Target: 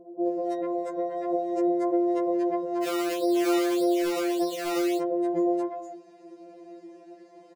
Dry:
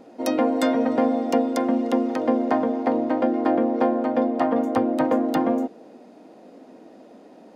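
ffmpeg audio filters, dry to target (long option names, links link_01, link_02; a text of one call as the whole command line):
ffmpeg -i in.wav -filter_complex "[0:a]acrossover=split=260|630|2300[link_01][link_02][link_03][link_04];[link_01]acompressor=threshold=-33dB:ratio=4[link_05];[link_02]acompressor=threshold=-29dB:ratio=4[link_06];[link_03]acompressor=threshold=-40dB:ratio=4[link_07];[link_04]acompressor=threshold=-54dB:ratio=4[link_08];[link_05][link_06][link_07][link_08]amix=inputs=4:normalize=0,highpass=frequency=130:width=0.5412,highpass=frequency=130:width=1.3066,equalizer=frequency=460:width_type=q:width=4:gain=8,equalizer=frequency=1300:width_type=q:width=4:gain=-8,equalizer=frequency=3400:width_type=q:width=4:gain=-8,lowpass=frequency=9100:width=0.5412,lowpass=frequency=9100:width=1.3066,aecho=1:1:2.9:0.59,acrossover=split=780[link_09][link_10];[link_10]adelay=260[link_11];[link_09][link_11]amix=inputs=2:normalize=0,asettb=1/sr,asplit=3[link_12][link_13][link_14];[link_12]atrim=end=2.834[link_15];[link_13]atrim=start=2.83:end=4.99,asetpts=PTS-STARTPTS,afade=type=in:duration=0.004:curve=qsin,afade=type=out:start_time=2.156:duration=0.004:curve=qsin,acrusher=samples=18:mix=1:aa=0.000001:lfo=1:lforange=18:lforate=1.7[link_16];[link_14]atrim=start=4.986[link_17];[link_15][link_16]acrossfade=duration=0.004:curve1=hsin:curve2=qsin[link_18];[link_18][link_17]acrossfade=duration=0.004:curve1=qsin:curve2=hsin,afftfilt=real='re*2.83*eq(mod(b,8),0)':imag='im*2.83*eq(mod(b,8),0)':win_size=2048:overlap=0.75" out.wav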